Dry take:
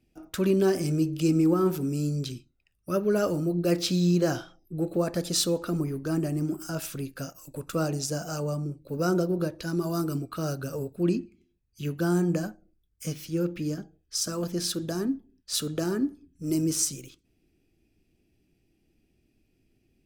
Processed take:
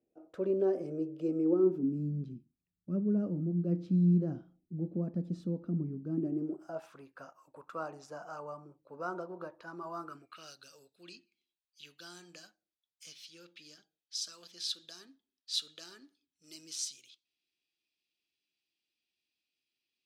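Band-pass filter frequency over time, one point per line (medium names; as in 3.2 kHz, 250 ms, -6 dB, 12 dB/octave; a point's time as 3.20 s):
band-pass filter, Q 2.8
1.38 s 510 Hz
2.05 s 200 Hz
6.05 s 200 Hz
6.95 s 1 kHz
10.00 s 1 kHz
10.54 s 3.8 kHz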